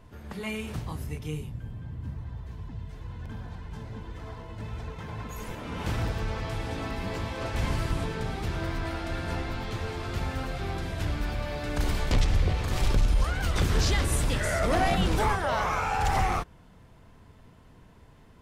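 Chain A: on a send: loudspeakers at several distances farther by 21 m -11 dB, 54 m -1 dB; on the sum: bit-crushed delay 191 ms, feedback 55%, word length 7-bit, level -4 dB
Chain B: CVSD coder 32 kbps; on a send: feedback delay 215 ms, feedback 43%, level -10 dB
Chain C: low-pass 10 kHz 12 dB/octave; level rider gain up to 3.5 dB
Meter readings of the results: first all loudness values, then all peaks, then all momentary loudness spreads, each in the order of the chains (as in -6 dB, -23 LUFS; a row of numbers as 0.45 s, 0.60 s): -26.0 LUFS, -30.5 LUFS, -27.0 LUFS; -8.0 dBFS, -13.0 dBFS, -11.5 dBFS; 16 LU, 15 LU, 15 LU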